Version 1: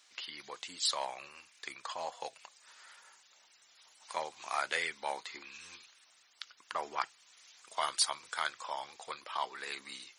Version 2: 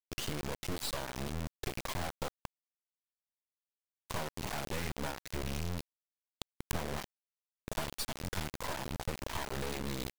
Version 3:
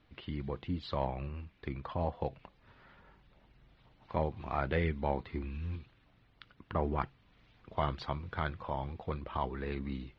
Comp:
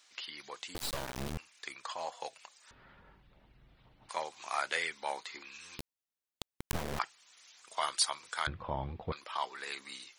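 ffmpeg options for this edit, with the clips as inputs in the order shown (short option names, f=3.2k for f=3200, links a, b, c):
-filter_complex "[1:a]asplit=2[a][b];[2:a]asplit=2[c][d];[0:a]asplit=5[e][f][g][h][i];[e]atrim=end=0.752[j];[a]atrim=start=0.748:end=1.382[k];[f]atrim=start=1.378:end=2.712[l];[c]atrim=start=2.708:end=4.092[m];[g]atrim=start=4.088:end=5.792[n];[b]atrim=start=5.788:end=6.992[o];[h]atrim=start=6.988:end=8.472[p];[d]atrim=start=8.468:end=9.122[q];[i]atrim=start=9.118[r];[j][k]acrossfade=d=0.004:c1=hsin:c2=hsin[s];[s][l]acrossfade=d=0.004:c1=hsin:c2=hsin[t];[t][m]acrossfade=d=0.004:c1=hsin:c2=hsin[u];[u][n]acrossfade=d=0.004:c1=hsin:c2=hsin[v];[v][o]acrossfade=d=0.004:c1=hsin:c2=hsin[w];[w][p]acrossfade=d=0.004:c1=hsin:c2=hsin[x];[x][q]acrossfade=d=0.004:c1=hsin:c2=hsin[y];[y][r]acrossfade=d=0.004:c1=hsin:c2=hsin"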